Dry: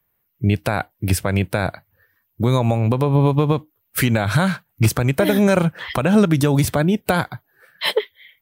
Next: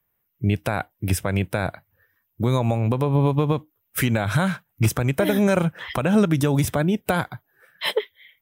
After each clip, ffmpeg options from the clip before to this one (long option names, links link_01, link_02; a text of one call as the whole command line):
ffmpeg -i in.wav -af "bandreject=frequency=4400:width=6.1,volume=-3.5dB" out.wav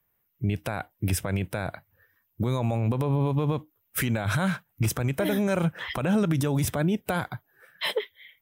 ffmpeg -i in.wav -af "alimiter=limit=-17dB:level=0:latency=1:release=43" out.wav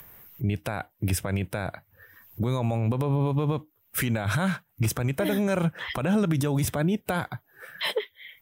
ffmpeg -i in.wav -af "acompressor=mode=upward:threshold=-30dB:ratio=2.5" out.wav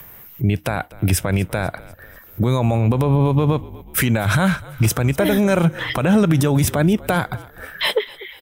ffmpeg -i in.wav -filter_complex "[0:a]agate=range=-11dB:threshold=-58dB:ratio=16:detection=peak,asplit=5[link_01][link_02][link_03][link_04][link_05];[link_02]adelay=246,afreqshift=-45,volume=-20dB[link_06];[link_03]adelay=492,afreqshift=-90,volume=-25.8dB[link_07];[link_04]adelay=738,afreqshift=-135,volume=-31.7dB[link_08];[link_05]adelay=984,afreqshift=-180,volume=-37.5dB[link_09];[link_01][link_06][link_07][link_08][link_09]amix=inputs=5:normalize=0,volume=8.5dB" out.wav